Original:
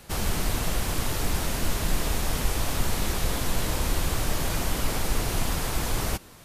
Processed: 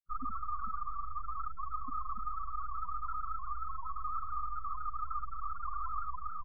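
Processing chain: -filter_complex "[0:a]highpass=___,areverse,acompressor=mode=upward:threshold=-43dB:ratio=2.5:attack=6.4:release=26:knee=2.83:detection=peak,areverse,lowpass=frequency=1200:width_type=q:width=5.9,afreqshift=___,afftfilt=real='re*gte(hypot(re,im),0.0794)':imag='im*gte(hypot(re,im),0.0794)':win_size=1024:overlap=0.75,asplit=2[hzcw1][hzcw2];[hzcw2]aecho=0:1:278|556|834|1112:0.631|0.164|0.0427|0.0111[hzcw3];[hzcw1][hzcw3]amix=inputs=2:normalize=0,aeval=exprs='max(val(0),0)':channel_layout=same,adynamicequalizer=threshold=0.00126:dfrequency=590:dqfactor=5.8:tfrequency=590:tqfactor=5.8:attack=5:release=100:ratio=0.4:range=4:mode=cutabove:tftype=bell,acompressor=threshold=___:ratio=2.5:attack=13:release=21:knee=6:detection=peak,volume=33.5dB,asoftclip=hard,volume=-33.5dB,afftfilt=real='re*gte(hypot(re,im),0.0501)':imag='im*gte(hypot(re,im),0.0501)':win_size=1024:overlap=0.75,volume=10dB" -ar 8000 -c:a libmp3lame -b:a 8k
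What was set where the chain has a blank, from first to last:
160, 52, -43dB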